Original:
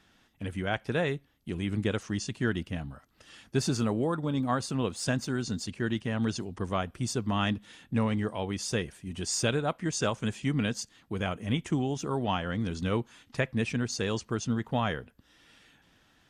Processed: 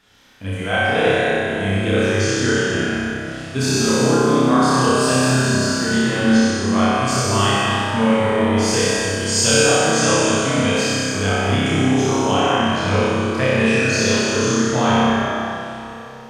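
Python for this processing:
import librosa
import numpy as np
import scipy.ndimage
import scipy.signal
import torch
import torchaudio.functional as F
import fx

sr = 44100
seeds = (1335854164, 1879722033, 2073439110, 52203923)

y = fx.low_shelf(x, sr, hz=420.0, db=-6.0)
y = fx.room_flutter(y, sr, wall_m=5.3, rt60_s=1.4)
y = fx.rev_plate(y, sr, seeds[0], rt60_s=3.0, hf_ratio=0.7, predelay_ms=0, drr_db=-5.5)
y = y * 10.0 ** (4.5 / 20.0)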